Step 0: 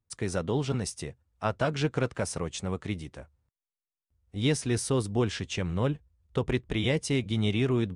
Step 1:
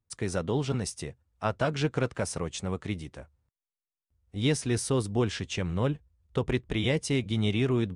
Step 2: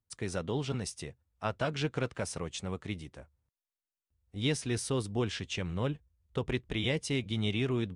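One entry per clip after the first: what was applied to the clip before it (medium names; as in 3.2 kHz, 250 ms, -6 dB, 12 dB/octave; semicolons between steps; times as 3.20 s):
no audible change
dynamic bell 3.1 kHz, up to +4 dB, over -47 dBFS, Q 0.99; trim -5 dB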